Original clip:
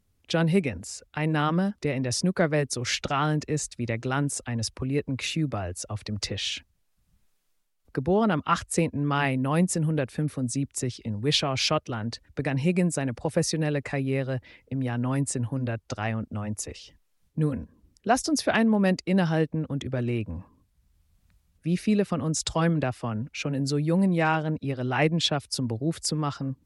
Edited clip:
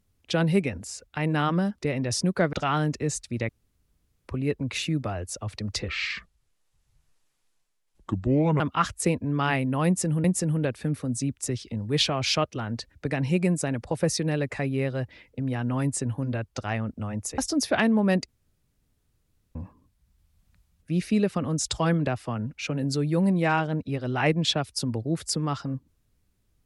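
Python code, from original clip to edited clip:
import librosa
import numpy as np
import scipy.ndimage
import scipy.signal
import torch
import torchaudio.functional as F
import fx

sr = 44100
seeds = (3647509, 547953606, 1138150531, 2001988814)

y = fx.edit(x, sr, fx.cut(start_s=2.53, length_s=0.48),
    fx.room_tone_fill(start_s=3.97, length_s=0.79),
    fx.speed_span(start_s=6.36, length_s=1.96, speed=0.72),
    fx.repeat(start_s=9.58, length_s=0.38, count=2),
    fx.cut(start_s=16.72, length_s=1.42),
    fx.room_tone_fill(start_s=19.04, length_s=1.27), tone=tone)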